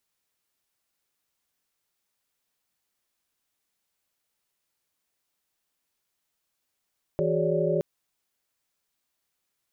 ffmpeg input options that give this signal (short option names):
-f lavfi -i "aevalsrc='0.0376*(sin(2*PI*164.81*t)+sin(2*PI*369.99*t)+sin(2*PI*415.3*t)+sin(2*PI*554.37*t)+sin(2*PI*587.33*t))':d=0.62:s=44100"